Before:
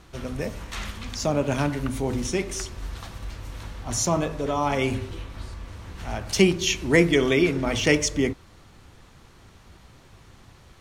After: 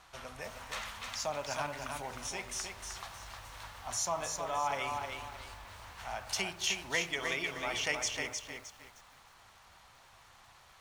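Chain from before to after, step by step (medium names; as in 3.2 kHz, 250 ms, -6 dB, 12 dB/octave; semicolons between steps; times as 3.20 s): compression 1.5:1, threshold -34 dBFS, peak gain reduction 8 dB; resonant low shelf 520 Hz -13.5 dB, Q 1.5; bit-crushed delay 309 ms, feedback 35%, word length 9-bit, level -4.5 dB; trim -4 dB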